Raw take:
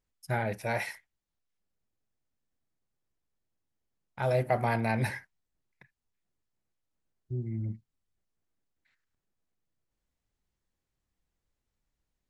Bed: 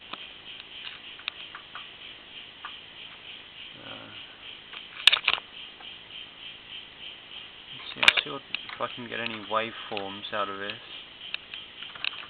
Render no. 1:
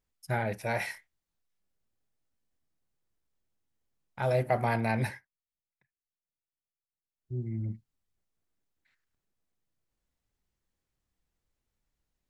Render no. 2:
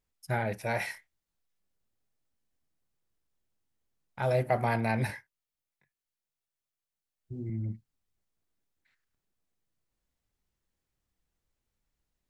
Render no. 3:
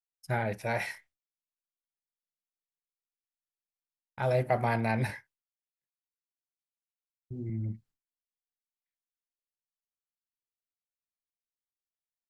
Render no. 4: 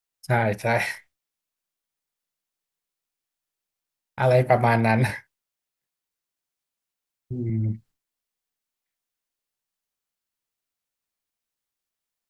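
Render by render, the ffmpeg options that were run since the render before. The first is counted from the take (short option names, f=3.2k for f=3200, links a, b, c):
-filter_complex "[0:a]asettb=1/sr,asplit=3[a][b][c];[a]atrim=end=0.784[d];[b]atrim=start=0.78:end=4.22,asetpts=PTS-STARTPTS,afade=t=in:d=0.004:c=qsin,afade=t=out:st=3.436:d=0.004:c=qsin,asplit=2[e][f];[f]adelay=26,volume=-8dB[g];[e][g]amix=inputs=2:normalize=0,atrim=end_sample=151704[h];[c]atrim=start=4.216[i];[d][h]acrossfade=d=0.004:c1=hsin:c2=qsin[j];[j][i]acrossfade=d=0.004:c1=qsin:c2=hsin,asplit=3[k][l][m];[k]atrim=end=5.22,asetpts=PTS-STARTPTS,afade=t=out:st=5.01:d=0.21:silence=0.133352[n];[l]atrim=start=5.22:end=7.17,asetpts=PTS-STARTPTS,volume=-17.5dB[o];[m]atrim=start=7.17,asetpts=PTS-STARTPTS,afade=t=in:d=0.21:silence=0.133352[p];[n][o][p]concat=n=3:v=0:a=1"
-filter_complex "[0:a]asettb=1/sr,asplit=3[a][b][c];[a]atrim=end=5.074[d];[b]atrim=start=5.07:end=7.5,asetpts=PTS-STARTPTS,afade=t=in:d=0.004:c=qsin,afade=t=out:st=2.426:d=0.004:c=qsin,asplit=2[e][f];[f]adelay=20,volume=-2dB[g];[e][g]amix=inputs=2:normalize=0,atrim=end_sample=107163[h];[c]atrim=start=7.496[i];[d][h]acrossfade=d=0.004:c1=hsin:c2=qsin[j];[j][i]acrossfade=d=0.004:c1=qsin:c2=hsin"
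-af "agate=range=-33dB:threshold=-55dB:ratio=3:detection=peak,highshelf=f=9.2k:g=-4.5"
-af "volume=9dB"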